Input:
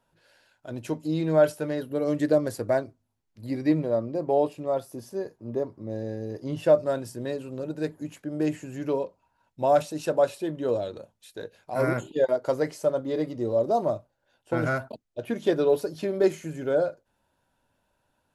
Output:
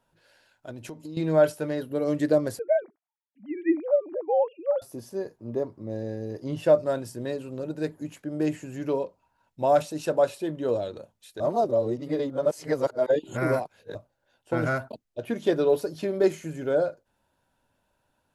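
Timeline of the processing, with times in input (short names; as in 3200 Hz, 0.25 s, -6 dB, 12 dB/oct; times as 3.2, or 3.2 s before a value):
0.7–1.17 compressor 10:1, threshold -35 dBFS
2.59–4.82 sine-wave speech
11.4–13.95 reverse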